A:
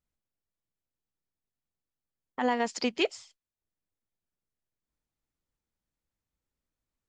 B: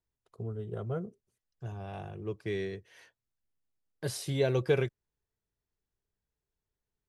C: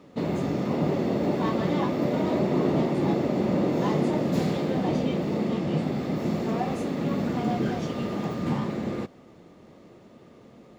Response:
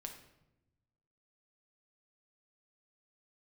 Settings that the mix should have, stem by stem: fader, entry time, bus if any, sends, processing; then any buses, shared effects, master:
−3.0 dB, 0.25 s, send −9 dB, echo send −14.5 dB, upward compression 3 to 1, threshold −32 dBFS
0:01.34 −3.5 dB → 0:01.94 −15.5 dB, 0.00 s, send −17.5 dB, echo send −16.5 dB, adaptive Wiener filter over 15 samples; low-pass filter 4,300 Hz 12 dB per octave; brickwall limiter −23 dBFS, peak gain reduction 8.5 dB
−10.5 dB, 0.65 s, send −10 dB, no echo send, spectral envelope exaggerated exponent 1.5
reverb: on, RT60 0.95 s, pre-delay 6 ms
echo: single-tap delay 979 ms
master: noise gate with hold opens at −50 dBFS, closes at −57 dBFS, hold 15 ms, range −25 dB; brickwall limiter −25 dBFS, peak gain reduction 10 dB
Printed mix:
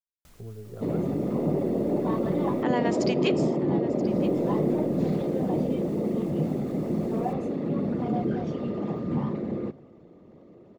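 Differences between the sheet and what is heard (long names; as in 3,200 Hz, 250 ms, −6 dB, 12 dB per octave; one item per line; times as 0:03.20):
stem C −10.5 dB → −2.0 dB
master: missing brickwall limiter −25 dBFS, peak gain reduction 10 dB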